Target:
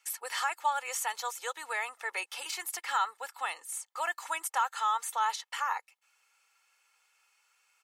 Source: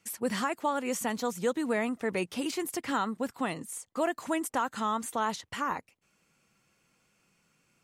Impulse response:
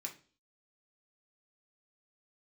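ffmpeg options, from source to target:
-af "highpass=f=790:w=0.5412,highpass=f=790:w=1.3066,aecho=1:1:2.3:0.5,volume=1dB"

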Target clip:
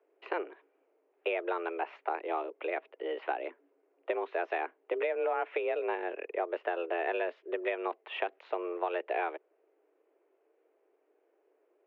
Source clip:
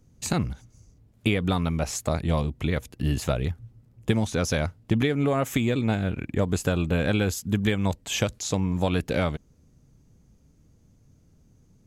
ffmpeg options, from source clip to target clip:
-af "highpass=f=240:t=q:w=0.5412,highpass=f=240:t=q:w=1.307,lowpass=f=2.5k:t=q:w=0.5176,lowpass=f=2.5k:t=q:w=0.7071,lowpass=f=2.5k:t=q:w=1.932,afreqshift=170,acompressor=threshold=-25dB:ratio=3,volume=-3dB"

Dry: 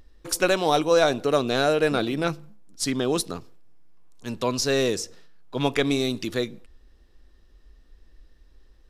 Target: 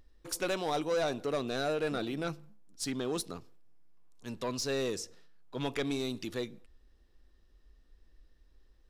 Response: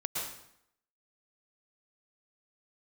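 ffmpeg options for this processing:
-af "asoftclip=type=tanh:threshold=-16.5dB,volume=-8.5dB"

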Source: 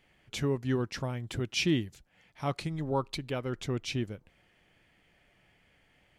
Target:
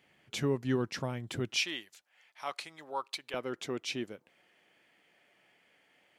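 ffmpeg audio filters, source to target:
-af "asetnsamples=n=441:p=0,asendcmd='1.56 highpass f 830;3.34 highpass f 290',highpass=130"

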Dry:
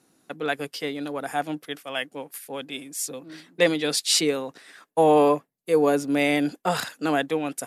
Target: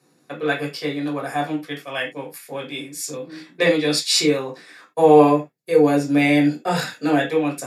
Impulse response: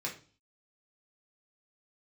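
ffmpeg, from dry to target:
-filter_complex "[0:a]asettb=1/sr,asplit=3[a][b][c];[a]atrim=end=5.274[d];[b]atrim=start=5.27:end=7.34,asetpts=PTS-STARTPTS,afade=t=in:d=0.004:c=qsin,afade=t=out:st=2.066:d=0.004:c=qsin,bandreject=f=1.1k:w=5.2[e];[c]atrim=start=7.336[f];[d][e]acrossfade=d=0.004:c1=hsin:c2=qsin[g];[g][f]acrossfade=d=0.004:c1=qsin:c2=hsin[h];[1:a]atrim=start_sample=2205,atrim=end_sample=4410[i];[h][i]afir=irnorm=-1:irlink=0,volume=1.5dB"

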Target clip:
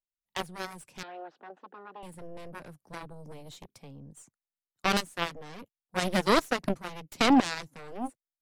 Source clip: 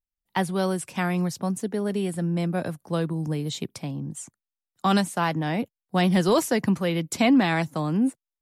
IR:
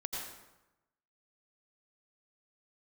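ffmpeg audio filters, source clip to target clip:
-filter_complex "[0:a]aeval=exprs='0.266*(cos(1*acos(clip(val(0)/0.266,-1,1)))-cos(1*PI/2))+0.0237*(cos(2*acos(clip(val(0)/0.266,-1,1)))-cos(2*PI/2))+0.106*(cos(3*acos(clip(val(0)/0.266,-1,1)))-cos(3*PI/2))+0.00335*(cos(6*acos(clip(val(0)/0.266,-1,1)))-cos(6*PI/2))':c=same,asettb=1/sr,asplit=3[a][b][c];[a]atrim=end=1.034[d];[b]atrim=start=1.03:end=2.03,asetpts=PTS-STARTPTS,afade=t=in:d=0.004:c=qsin,afade=t=out:st=0.996:d=0.004:c=qsin,highpass=f=300:w=0.5412,highpass=f=300:w=1.3066,equalizer=f=760:t=q:w=4:g=7,equalizer=f=1.5k:t=q:w=4:g=6,equalizer=f=2.2k:t=q:w=4:g=-8,lowpass=f=3.1k:w=0.5412,lowpass=f=3.1k:w=1.3066[e];[c]atrim=start=2.026[f];[d][e]acrossfade=d=0.004:c1=hsin:c2=qsin[g];[g][f]acrossfade=d=0.004:c1=qsin:c2=hsin"

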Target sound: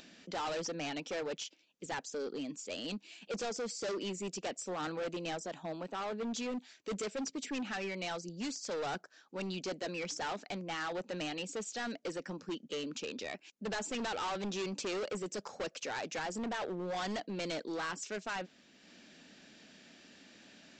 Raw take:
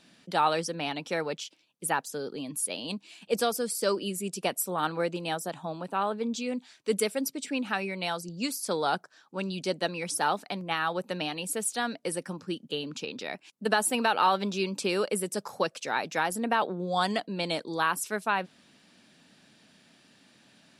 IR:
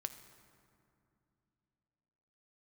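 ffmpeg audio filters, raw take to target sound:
-af "equalizer=f=125:t=o:w=1:g=-12,equalizer=f=1k:t=o:w=1:g=-7,equalizer=f=4k:t=o:w=1:g=-4,acompressor=mode=upward:threshold=-50dB:ratio=2.5,aresample=16000,volume=34.5dB,asoftclip=hard,volume=-34.5dB,aresample=44100"

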